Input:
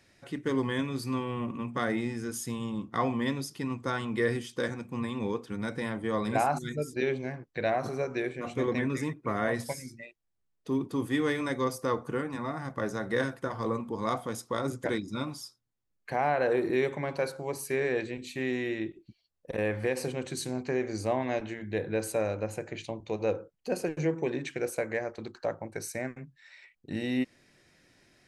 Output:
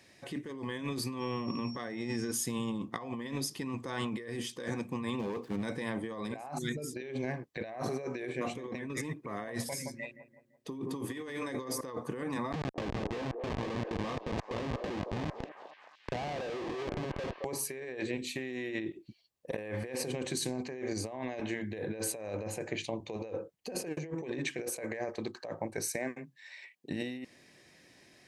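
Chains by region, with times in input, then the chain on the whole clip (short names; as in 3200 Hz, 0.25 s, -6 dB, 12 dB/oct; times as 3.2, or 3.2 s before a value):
1.19–2.31 LPF 7800 Hz + whine 5500 Hz -51 dBFS
5.19–5.63 median filter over 15 samples + overloaded stage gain 30 dB
9.63–11.81 notches 50/100/150/200/250/300/350/400 Hz + analogue delay 0.169 s, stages 2048, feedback 45%, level -12.5 dB
12.52–17.45 Schmitt trigger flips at -32.5 dBFS + air absorption 140 m + delay with a stepping band-pass 0.218 s, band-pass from 500 Hz, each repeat 0.7 oct, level -9 dB
25.96–26.9 HPF 210 Hz + notch 1300 Hz, Q 9.9
whole clip: HPF 150 Hz 6 dB/oct; notch 1400 Hz, Q 6.1; negative-ratio compressor -37 dBFS, ratio -1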